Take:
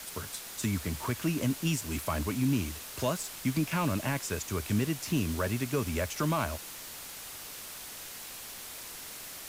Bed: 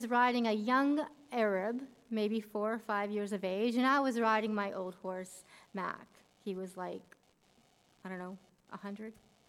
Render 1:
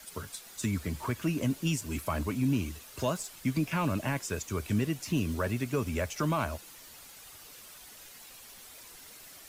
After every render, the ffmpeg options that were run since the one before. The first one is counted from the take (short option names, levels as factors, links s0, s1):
-af "afftdn=nr=9:nf=-44"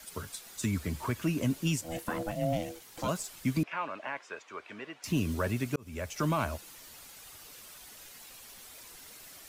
-filter_complex "[0:a]asplit=3[s0][s1][s2];[s0]afade=t=out:st=1.81:d=0.02[s3];[s1]aeval=exprs='val(0)*sin(2*PI*410*n/s)':c=same,afade=t=in:st=1.81:d=0.02,afade=t=out:st=3.07:d=0.02[s4];[s2]afade=t=in:st=3.07:d=0.02[s5];[s3][s4][s5]amix=inputs=3:normalize=0,asettb=1/sr,asplit=3[s6][s7][s8];[s6]atrim=end=3.634[s9];[s7]atrim=start=3.63:end=5.04,asetpts=PTS-STARTPTS,afade=t=in:d=0.004:c=qsin,afade=t=out:st=1.406:d=0.004:c=qsin,highpass=680,lowpass=2300[s10];[s8]atrim=start=5.036[s11];[s9][s10]acrossfade=d=0.004:c1=hsin:c2=qsin[s12];[s12][s11]acrossfade=d=0.004:c1=qsin:c2=hsin,asplit=2[s13][s14];[s13]atrim=end=5.76,asetpts=PTS-STARTPTS,afade=t=out:st=5.756:d=0.004:c=hsin[s15];[s14]atrim=start=5.76,asetpts=PTS-STARTPTS,afade=t=in:d=0.47[s16];[s15][s16]concat=n=2:v=0:a=1"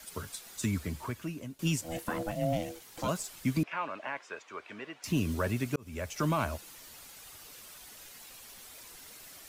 -filter_complex "[0:a]asplit=2[s0][s1];[s0]atrim=end=1.59,asetpts=PTS-STARTPTS,afade=t=out:st=0.69:d=0.9:silence=0.105925[s2];[s1]atrim=start=1.59,asetpts=PTS-STARTPTS,afade=t=in:d=0.004:c=hsin:silence=0.105925[s3];[s2][s3]concat=n=2:v=0:a=1"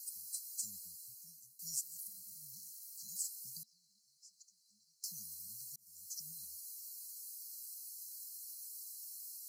-af "afftfilt=real='re*(1-between(b*sr/4096,220,4000))':imag='im*(1-between(b*sr/4096,220,4000))':win_size=4096:overlap=0.75,aderivative"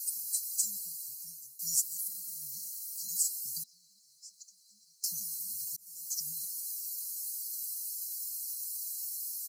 -af "highshelf=f=3000:g=9,aecho=1:1:5.7:0.81"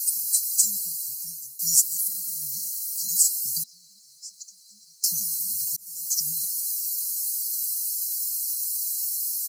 -af "volume=3.35"